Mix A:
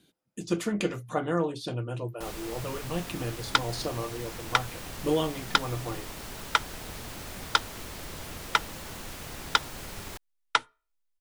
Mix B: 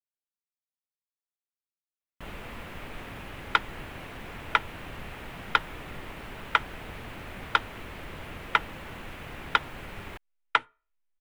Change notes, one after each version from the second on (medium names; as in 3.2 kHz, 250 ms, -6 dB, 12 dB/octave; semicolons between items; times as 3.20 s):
speech: muted; master: add resonant high shelf 3.7 kHz -12.5 dB, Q 1.5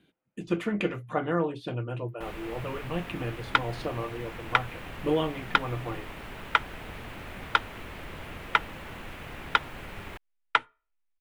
speech: unmuted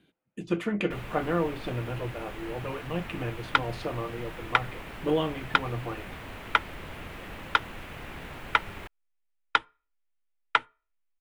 first sound: entry -1.30 s